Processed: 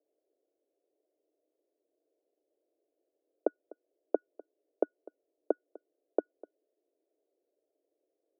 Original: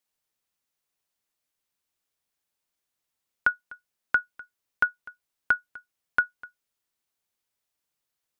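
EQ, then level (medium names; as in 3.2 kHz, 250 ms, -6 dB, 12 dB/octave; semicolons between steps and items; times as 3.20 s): elliptic band-pass 300–650 Hz, stop band 60 dB; peaking EQ 410 Hz +13 dB 2 oct; +8.0 dB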